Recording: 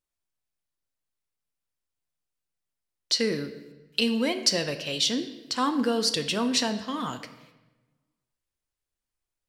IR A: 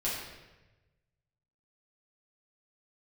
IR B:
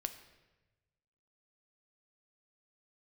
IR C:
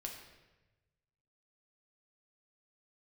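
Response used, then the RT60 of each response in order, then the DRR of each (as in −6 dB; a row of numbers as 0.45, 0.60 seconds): B; 1.1, 1.1, 1.1 seconds; −8.5, 8.0, 0.5 decibels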